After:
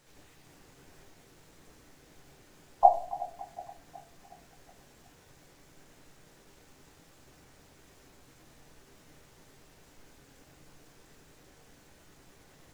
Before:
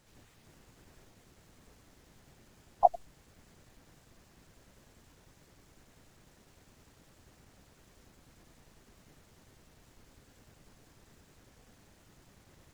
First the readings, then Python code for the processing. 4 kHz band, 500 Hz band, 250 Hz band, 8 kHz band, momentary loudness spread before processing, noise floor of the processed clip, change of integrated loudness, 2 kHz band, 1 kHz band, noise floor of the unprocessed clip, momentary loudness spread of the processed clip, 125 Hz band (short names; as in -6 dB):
+4.0 dB, +3.5 dB, +2.5 dB, +4.0 dB, 0 LU, -60 dBFS, +0.5 dB, +4.5 dB, +5.0 dB, -64 dBFS, 21 LU, +0.5 dB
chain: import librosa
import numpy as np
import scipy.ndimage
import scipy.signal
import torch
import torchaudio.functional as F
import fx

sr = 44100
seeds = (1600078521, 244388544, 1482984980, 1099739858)

y = fx.low_shelf(x, sr, hz=210.0, db=-7.0)
y = fx.echo_split(y, sr, split_hz=740.0, low_ms=368, high_ms=280, feedback_pct=52, wet_db=-16)
y = fx.room_shoebox(y, sr, seeds[0], volume_m3=42.0, walls='mixed', distance_m=0.42)
y = y * librosa.db_to_amplitude(2.5)